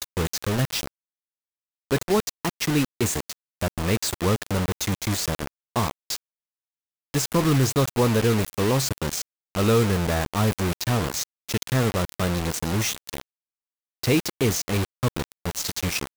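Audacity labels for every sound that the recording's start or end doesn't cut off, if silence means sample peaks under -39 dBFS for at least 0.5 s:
1.910000	6.170000	sound
7.140000	13.210000	sound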